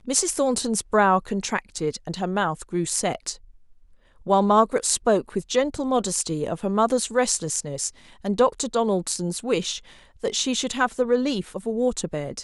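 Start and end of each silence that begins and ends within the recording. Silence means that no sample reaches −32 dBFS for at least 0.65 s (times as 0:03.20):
0:03.33–0:04.27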